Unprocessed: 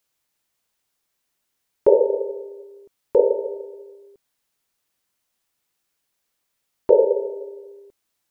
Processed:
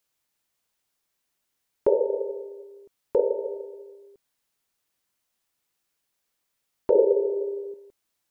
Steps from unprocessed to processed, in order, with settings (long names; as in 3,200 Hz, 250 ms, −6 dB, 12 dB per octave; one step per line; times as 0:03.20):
0:06.95–0:07.74: parametric band 350 Hz +12 dB 0.73 octaves
downward compressor 1.5 to 1, threshold −21 dBFS, peak gain reduction 6 dB
level −2.5 dB